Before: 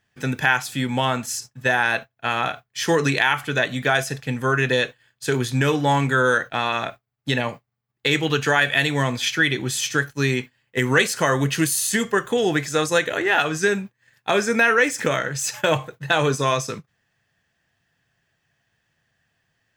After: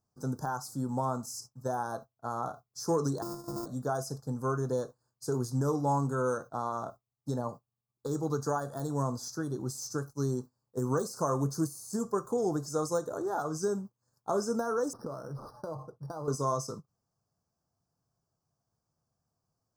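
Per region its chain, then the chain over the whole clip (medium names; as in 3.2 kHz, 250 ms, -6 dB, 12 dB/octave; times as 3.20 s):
3.22–3.66 s: sorted samples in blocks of 128 samples + compression 4:1, threshold -23 dBFS + comb 6.4 ms, depth 43%
14.93–16.28 s: treble shelf 3.1 kHz -11.5 dB + compression, threshold -24 dBFS + decimation joined by straight lines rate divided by 6×
whole clip: de-esser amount 50%; elliptic band-stop 1.2–5 kHz, stop band 50 dB; trim -8.5 dB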